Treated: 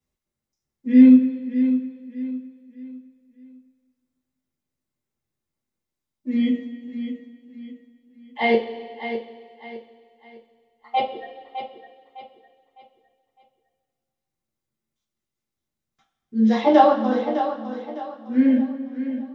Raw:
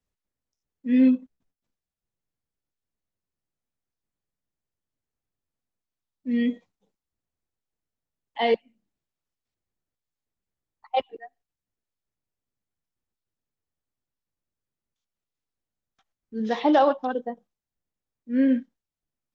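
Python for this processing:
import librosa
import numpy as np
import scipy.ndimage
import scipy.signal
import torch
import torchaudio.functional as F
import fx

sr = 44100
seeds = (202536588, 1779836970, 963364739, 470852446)

p1 = fx.peak_eq(x, sr, hz=280.0, db=6.5, octaves=0.9)
p2 = p1 + fx.echo_feedback(p1, sr, ms=607, feedback_pct=35, wet_db=-10.0, dry=0)
p3 = fx.rev_double_slope(p2, sr, seeds[0], early_s=0.22, late_s=1.8, knee_db=-18, drr_db=-5.5)
y = p3 * librosa.db_to_amplitude(-3.5)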